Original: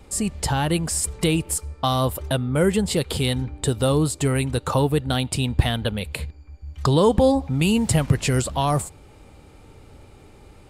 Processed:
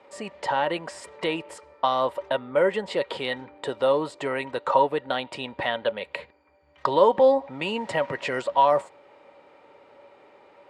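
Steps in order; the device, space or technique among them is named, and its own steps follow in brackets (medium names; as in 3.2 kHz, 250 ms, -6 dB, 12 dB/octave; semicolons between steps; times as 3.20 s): tin-can telephone (band-pass 490–2600 Hz; small resonant body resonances 570/950/1900 Hz, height 13 dB, ringing for 95 ms)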